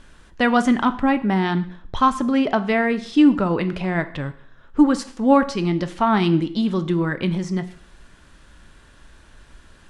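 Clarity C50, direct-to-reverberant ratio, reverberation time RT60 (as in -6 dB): 15.5 dB, 11.0 dB, 0.60 s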